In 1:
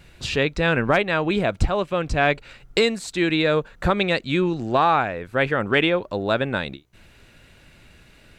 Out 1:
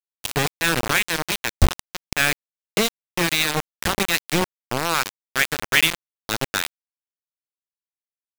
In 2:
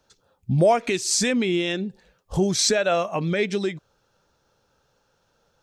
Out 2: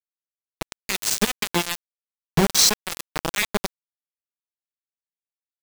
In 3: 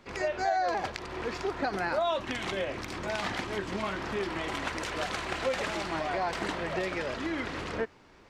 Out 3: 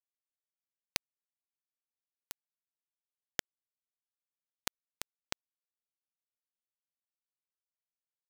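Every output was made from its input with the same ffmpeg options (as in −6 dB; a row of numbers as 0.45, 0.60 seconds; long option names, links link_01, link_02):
-filter_complex "[0:a]equalizer=frequency=280:width=4.2:gain=-8,bandreject=frequency=60:width_type=h:width=6,bandreject=frequency=120:width_type=h:width=6,bandreject=frequency=180:width_type=h:width=6,bandreject=frequency=240:width_type=h:width=6,bandreject=frequency=300:width_type=h:width=6,acrossover=split=290|1300|2700[link_01][link_02][link_03][link_04];[link_02]acompressor=threshold=-32dB:ratio=10[link_05];[link_01][link_05][link_03][link_04]amix=inputs=4:normalize=0,acrossover=split=770[link_06][link_07];[link_06]aeval=exprs='val(0)*(1-0.7/2+0.7/2*cos(2*PI*2.5*n/s))':channel_layout=same[link_08];[link_07]aeval=exprs='val(0)*(1-0.7/2-0.7/2*cos(2*PI*2.5*n/s))':channel_layout=same[link_09];[link_08][link_09]amix=inputs=2:normalize=0,acrusher=bits=3:mix=0:aa=0.000001,volume=5.5dB"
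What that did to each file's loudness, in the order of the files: −0.5, +0.5, −10.5 LU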